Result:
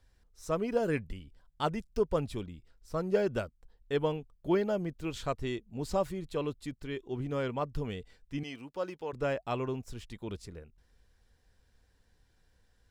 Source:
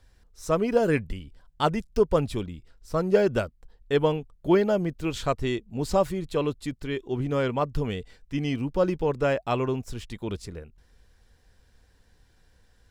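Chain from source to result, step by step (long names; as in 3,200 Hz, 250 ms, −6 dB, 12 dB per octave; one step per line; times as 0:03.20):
0:08.43–0:09.13: high-pass filter 710 Hz 6 dB per octave
level −7.5 dB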